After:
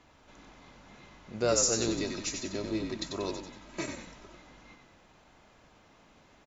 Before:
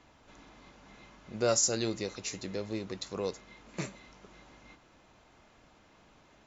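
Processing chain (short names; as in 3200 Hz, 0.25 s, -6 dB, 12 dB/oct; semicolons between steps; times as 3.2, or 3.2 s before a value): 1.88–4.35 comb 3.1 ms, depth 80%; frequency-shifting echo 93 ms, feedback 44%, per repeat -50 Hz, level -5.5 dB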